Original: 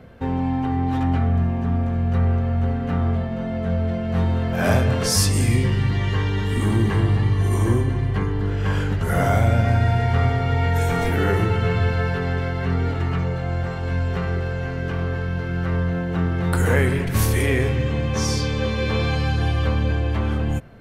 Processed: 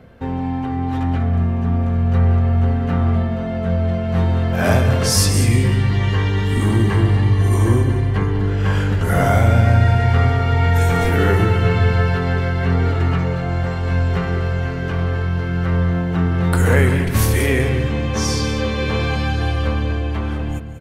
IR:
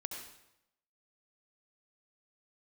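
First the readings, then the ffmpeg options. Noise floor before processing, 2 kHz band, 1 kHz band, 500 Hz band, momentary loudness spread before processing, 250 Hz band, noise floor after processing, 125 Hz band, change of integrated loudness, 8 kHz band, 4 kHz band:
−26 dBFS, +3.5 dB, +3.5 dB, +3.0 dB, 6 LU, +3.0 dB, −23 dBFS, +4.0 dB, +4.0 dB, +3.5 dB, +3.5 dB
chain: -af "dynaudnorm=framelen=430:gausssize=9:maxgain=5dB,aecho=1:1:139|194:0.106|0.266"

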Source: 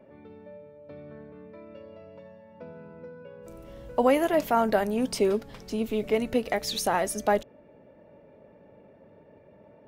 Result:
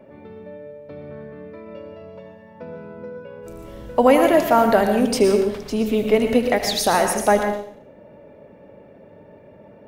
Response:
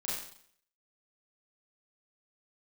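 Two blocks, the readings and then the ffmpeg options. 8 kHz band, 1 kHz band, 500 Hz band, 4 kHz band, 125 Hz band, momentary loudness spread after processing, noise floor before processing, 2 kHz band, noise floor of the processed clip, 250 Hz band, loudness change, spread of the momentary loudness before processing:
+8.0 dB, +8.0 dB, +8.5 dB, +8.0 dB, +8.5 dB, 22 LU, −55 dBFS, +8.5 dB, −47 dBFS, +8.5 dB, +8.0 dB, 22 LU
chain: -filter_complex "[0:a]asplit=2[link_01][link_02];[1:a]atrim=start_sample=2205,adelay=77[link_03];[link_02][link_03]afir=irnorm=-1:irlink=0,volume=-8.5dB[link_04];[link_01][link_04]amix=inputs=2:normalize=0,volume=7dB"

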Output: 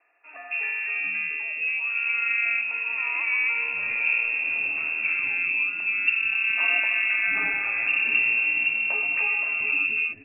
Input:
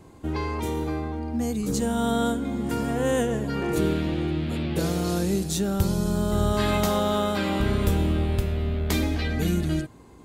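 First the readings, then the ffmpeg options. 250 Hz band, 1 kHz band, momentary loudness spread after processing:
below −25 dB, −8.5 dB, 5 LU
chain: -filter_complex "[0:a]lowpass=frequency=2400:width_type=q:width=0.5098,lowpass=frequency=2400:width_type=q:width=0.6013,lowpass=frequency=2400:width_type=q:width=0.9,lowpass=frequency=2400:width_type=q:width=2.563,afreqshift=-2800,equalizer=frequency=300:width=2.4:gain=8.5,acrossover=split=370|1400[link_01][link_02][link_03];[link_03]adelay=270[link_04];[link_01]adelay=700[link_05];[link_05][link_02][link_04]amix=inputs=3:normalize=0"

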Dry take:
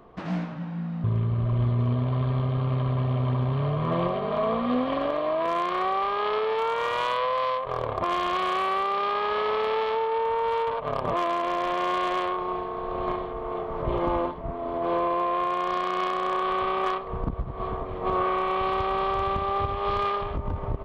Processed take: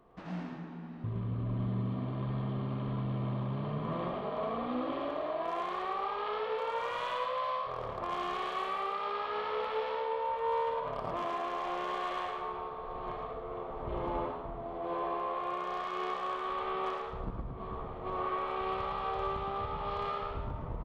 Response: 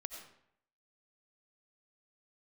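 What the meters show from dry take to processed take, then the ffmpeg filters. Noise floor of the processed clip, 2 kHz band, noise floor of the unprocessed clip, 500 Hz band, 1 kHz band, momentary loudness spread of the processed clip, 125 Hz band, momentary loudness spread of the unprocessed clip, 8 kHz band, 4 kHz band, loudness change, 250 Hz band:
−42 dBFS, −9.0 dB, −34 dBFS, −9.0 dB, −8.5 dB, 6 LU, −10.5 dB, 6 LU, can't be measured, −9.0 dB, −9.0 dB, −8.5 dB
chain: -filter_complex "[0:a]asplit=5[link_01][link_02][link_03][link_04][link_05];[link_02]adelay=111,afreqshift=73,volume=-6.5dB[link_06];[link_03]adelay=222,afreqshift=146,volume=-15.4dB[link_07];[link_04]adelay=333,afreqshift=219,volume=-24.2dB[link_08];[link_05]adelay=444,afreqshift=292,volume=-33.1dB[link_09];[link_01][link_06][link_07][link_08][link_09]amix=inputs=5:normalize=0[link_10];[1:a]atrim=start_sample=2205,asetrate=61740,aresample=44100[link_11];[link_10][link_11]afir=irnorm=-1:irlink=0,volume=-4.5dB"

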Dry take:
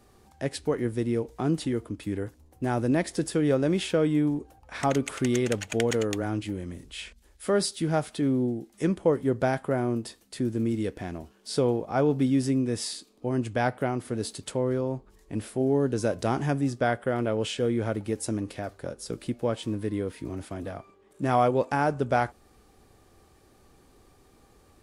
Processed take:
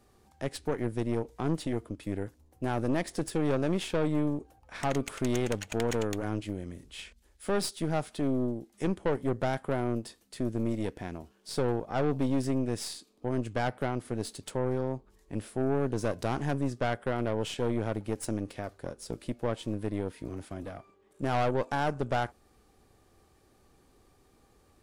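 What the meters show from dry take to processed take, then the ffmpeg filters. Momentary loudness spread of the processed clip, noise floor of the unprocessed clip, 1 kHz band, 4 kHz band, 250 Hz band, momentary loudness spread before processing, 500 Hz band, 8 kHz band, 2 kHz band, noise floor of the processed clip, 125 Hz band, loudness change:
11 LU, −59 dBFS, −4.0 dB, −4.0 dB, −4.5 dB, 12 LU, −4.5 dB, −5.0 dB, −4.0 dB, −64 dBFS, −3.5 dB, −4.5 dB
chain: -af "aeval=exprs='(tanh(14.1*val(0)+0.8)-tanh(0.8))/14.1':channel_layout=same"

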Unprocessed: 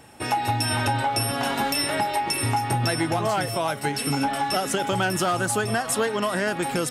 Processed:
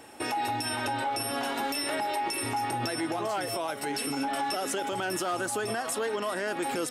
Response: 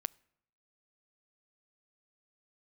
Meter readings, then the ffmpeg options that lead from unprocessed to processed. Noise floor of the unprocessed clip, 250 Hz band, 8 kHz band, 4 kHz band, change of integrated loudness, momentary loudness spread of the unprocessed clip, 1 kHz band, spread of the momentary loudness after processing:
−32 dBFS, −6.5 dB, −6.0 dB, −6.5 dB, −6.5 dB, 2 LU, −6.0 dB, 1 LU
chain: -af "lowshelf=frequency=220:width_type=q:width=1.5:gain=-8.5,alimiter=limit=-22dB:level=0:latency=1:release=107"

